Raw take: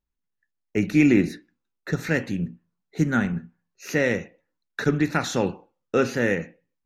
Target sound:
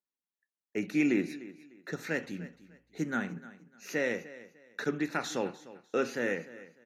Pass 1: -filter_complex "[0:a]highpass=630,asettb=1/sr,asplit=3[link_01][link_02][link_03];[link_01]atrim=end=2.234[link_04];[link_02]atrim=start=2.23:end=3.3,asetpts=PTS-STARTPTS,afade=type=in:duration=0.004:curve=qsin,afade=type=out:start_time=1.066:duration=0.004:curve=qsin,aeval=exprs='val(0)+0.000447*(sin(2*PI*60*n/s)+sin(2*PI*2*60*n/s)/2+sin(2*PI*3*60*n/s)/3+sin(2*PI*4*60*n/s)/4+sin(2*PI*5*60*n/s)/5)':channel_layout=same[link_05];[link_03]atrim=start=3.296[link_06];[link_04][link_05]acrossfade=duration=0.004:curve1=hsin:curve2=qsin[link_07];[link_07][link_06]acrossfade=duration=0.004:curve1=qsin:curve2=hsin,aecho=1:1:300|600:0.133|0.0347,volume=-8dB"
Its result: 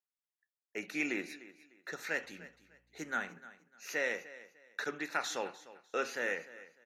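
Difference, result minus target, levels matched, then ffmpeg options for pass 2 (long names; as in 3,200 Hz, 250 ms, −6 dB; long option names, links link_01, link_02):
250 Hz band −7.5 dB
-filter_complex "[0:a]highpass=240,asettb=1/sr,asplit=3[link_01][link_02][link_03];[link_01]atrim=end=2.234[link_04];[link_02]atrim=start=2.23:end=3.3,asetpts=PTS-STARTPTS,afade=type=in:duration=0.004:curve=qsin,afade=type=out:start_time=1.066:duration=0.004:curve=qsin,aeval=exprs='val(0)+0.000447*(sin(2*PI*60*n/s)+sin(2*PI*2*60*n/s)/2+sin(2*PI*3*60*n/s)/3+sin(2*PI*4*60*n/s)/4+sin(2*PI*5*60*n/s)/5)':channel_layout=same[link_05];[link_03]atrim=start=3.296[link_06];[link_04][link_05]acrossfade=duration=0.004:curve1=hsin:curve2=qsin[link_07];[link_07][link_06]acrossfade=duration=0.004:curve1=qsin:curve2=hsin,aecho=1:1:300|600:0.133|0.0347,volume=-8dB"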